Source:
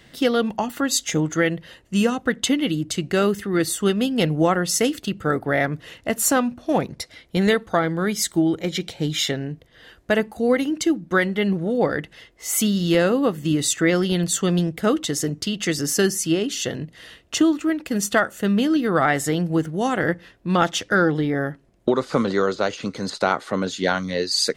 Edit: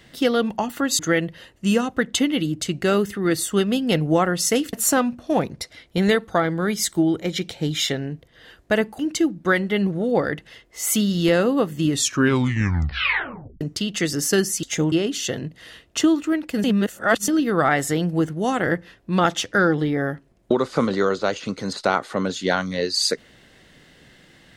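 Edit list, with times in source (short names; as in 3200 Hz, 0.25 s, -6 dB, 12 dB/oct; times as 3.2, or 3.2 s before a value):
0.99–1.28 move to 16.29
5.02–6.12 cut
10.38–10.65 cut
13.56 tape stop 1.71 s
18.01–18.65 reverse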